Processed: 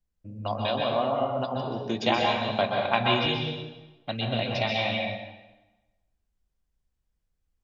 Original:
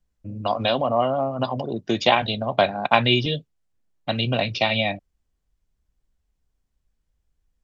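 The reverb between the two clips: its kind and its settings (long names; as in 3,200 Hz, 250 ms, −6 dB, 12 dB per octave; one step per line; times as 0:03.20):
dense smooth reverb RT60 1.1 s, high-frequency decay 0.85×, pre-delay 115 ms, DRR −0.5 dB
level −7.5 dB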